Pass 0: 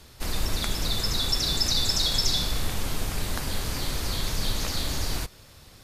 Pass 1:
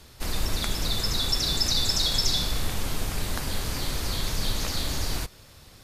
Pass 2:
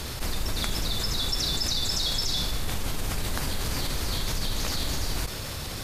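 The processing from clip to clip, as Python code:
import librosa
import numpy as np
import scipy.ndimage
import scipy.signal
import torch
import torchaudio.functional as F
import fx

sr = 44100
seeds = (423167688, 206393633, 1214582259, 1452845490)

y1 = x
y2 = fx.env_flatten(y1, sr, amount_pct=70)
y2 = y2 * 10.0 ** (-5.5 / 20.0)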